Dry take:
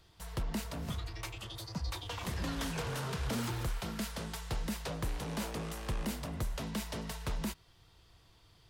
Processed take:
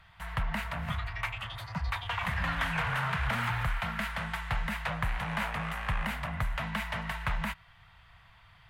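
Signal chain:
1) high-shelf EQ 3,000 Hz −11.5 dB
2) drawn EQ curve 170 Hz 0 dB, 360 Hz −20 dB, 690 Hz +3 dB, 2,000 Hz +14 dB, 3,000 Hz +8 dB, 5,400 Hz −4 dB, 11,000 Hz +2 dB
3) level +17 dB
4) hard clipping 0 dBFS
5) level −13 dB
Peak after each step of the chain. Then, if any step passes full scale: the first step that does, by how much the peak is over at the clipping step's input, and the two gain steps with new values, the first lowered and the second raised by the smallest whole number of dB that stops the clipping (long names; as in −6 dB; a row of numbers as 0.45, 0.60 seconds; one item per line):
−26.0, −20.0, −3.0, −3.0, −16.0 dBFS
no step passes full scale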